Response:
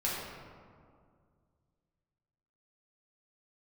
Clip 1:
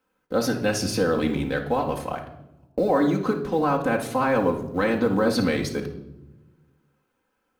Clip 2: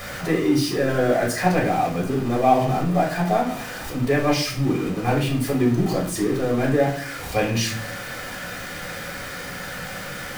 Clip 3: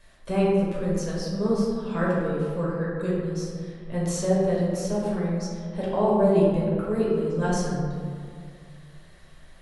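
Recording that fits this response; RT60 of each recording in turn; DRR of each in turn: 3; 0.85, 0.50, 2.1 seconds; −0.5, −2.0, −6.5 decibels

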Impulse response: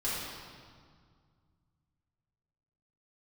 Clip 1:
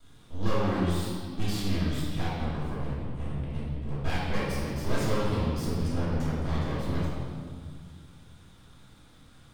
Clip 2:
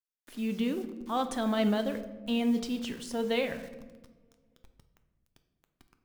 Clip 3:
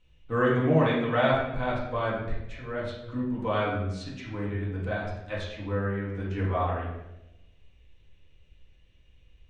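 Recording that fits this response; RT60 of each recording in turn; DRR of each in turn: 1; 2.0 s, non-exponential decay, 0.95 s; −9.5, 7.5, −7.5 decibels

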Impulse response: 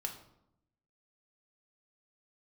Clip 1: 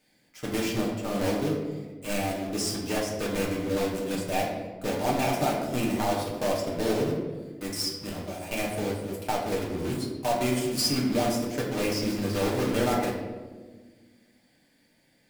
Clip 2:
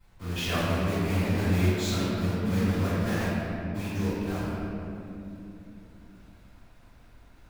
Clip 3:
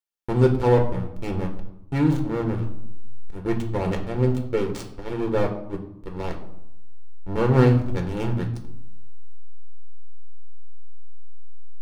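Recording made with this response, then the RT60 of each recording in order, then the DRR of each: 3; 1.4, 3.0, 0.80 seconds; −4.0, −18.5, 2.5 decibels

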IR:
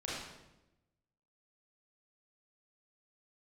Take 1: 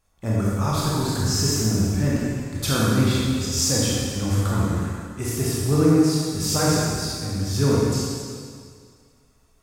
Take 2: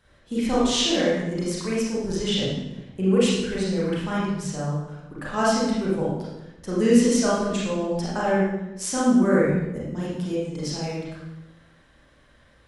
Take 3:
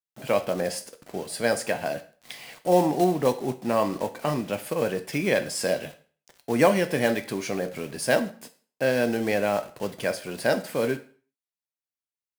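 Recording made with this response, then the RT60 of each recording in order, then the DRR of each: 2; 2.1, 0.95, 0.45 seconds; −7.0, −7.5, 9.0 decibels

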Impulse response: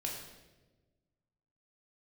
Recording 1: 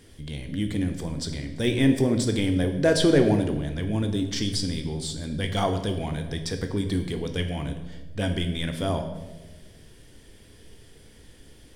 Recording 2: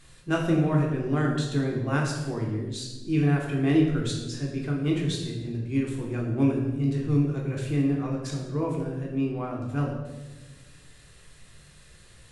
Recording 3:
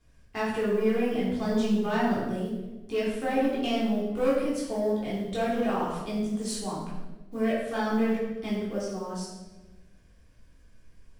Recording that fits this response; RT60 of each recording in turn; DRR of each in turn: 2; 1.2, 1.2, 1.2 seconds; 5.0, −2.0, −8.5 decibels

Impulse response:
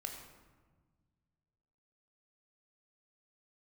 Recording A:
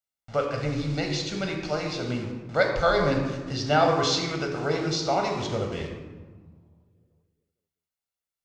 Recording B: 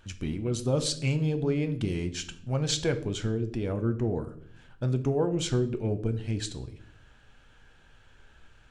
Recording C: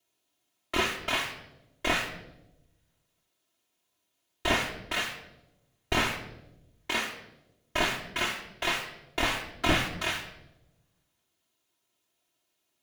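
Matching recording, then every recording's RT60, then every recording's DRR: A; 1.4, 0.60, 0.95 seconds; 2.0, 8.5, −9.5 decibels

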